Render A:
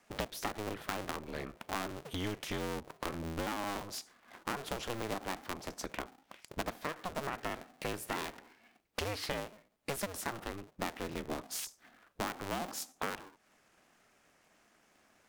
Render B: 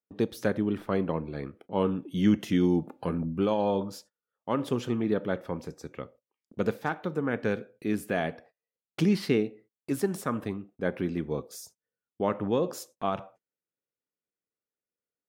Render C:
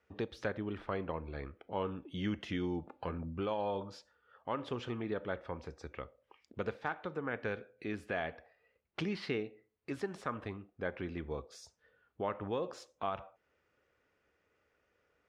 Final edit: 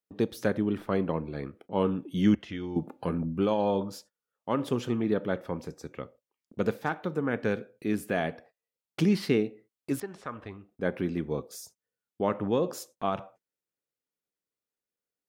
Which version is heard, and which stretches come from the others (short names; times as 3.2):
B
2.35–2.76 from C
10–10.71 from C
not used: A